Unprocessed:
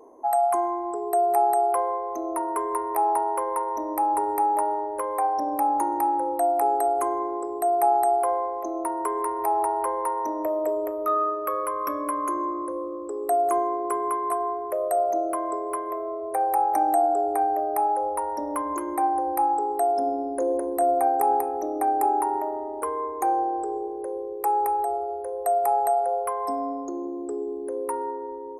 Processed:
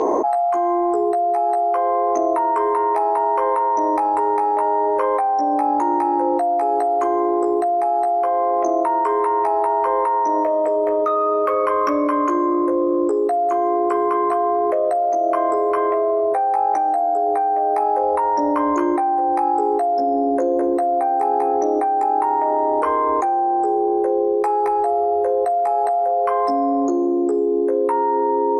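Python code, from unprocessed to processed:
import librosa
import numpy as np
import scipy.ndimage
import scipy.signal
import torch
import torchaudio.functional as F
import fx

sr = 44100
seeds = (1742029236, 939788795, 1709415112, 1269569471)

y = scipy.signal.sosfilt(scipy.signal.butter(4, 6100.0, 'lowpass', fs=sr, output='sos'), x)
y = fx.low_shelf(y, sr, hz=96.0, db=-10.0)
y = fx.doubler(y, sr, ms=14.0, db=-3.5)
y = fx.env_flatten(y, sr, amount_pct=100)
y = y * 10.0 ** (-2.5 / 20.0)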